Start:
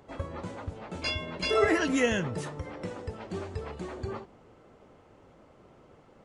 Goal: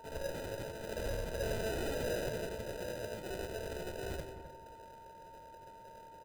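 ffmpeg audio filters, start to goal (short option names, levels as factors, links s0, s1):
-filter_complex "[0:a]afftfilt=real='re':imag='-im':win_size=8192:overlap=0.75,bandpass=f=1000:t=q:w=0.75:csg=0,acrusher=samples=40:mix=1:aa=0.000001,alimiter=level_in=2.24:limit=0.0631:level=0:latency=1:release=161,volume=0.447,aeval=exprs='0.0126*(abs(mod(val(0)/0.0126+3,4)-2)-1)':c=same,equalizer=f=690:t=o:w=0.28:g=5,asplit=2[s0][s1];[s1]adelay=259,lowpass=f=1400:p=1,volume=0.335,asplit=2[s2][s3];[s3]adelay=259,lowpass=f=1400:p=1,volume=0.27,asplit=2[s4][s5];[s5]adelay=259,lowpass=f=1400:p=1,volume=0.27[s6];[s2][s4][s6]amix=inputs=3:normalize=0[s7];[s0][s7]amix=inputs=2:normalize=0,dynaudnorm=f=110:g=3:m=1.5,aecho=1:1:2:0.49,aeval=exprs='val(0)+0.002*sin(2*PI*910*n/s)':c=same,adynamicequalizer=threshold=0.00178:dfrequency=1000:dqfactor=2:tfrequency=1000:tqfactor=2:attack=5:release=100:ratio=0.375:range=2:mode=cutabove:tftype=bell,volume=1.26"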